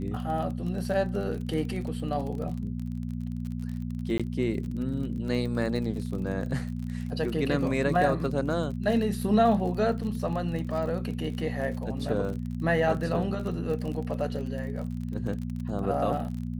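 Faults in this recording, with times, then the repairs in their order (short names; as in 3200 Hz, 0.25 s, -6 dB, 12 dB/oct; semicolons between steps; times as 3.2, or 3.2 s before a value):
crackle 33/s -34 dBFS
hum 60 Hz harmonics 4 -33 dBFS
4.18–4.2 gap 16 ms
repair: de-click; de-hum 60 Hz, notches 4; interpolate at 4.18, 16 ms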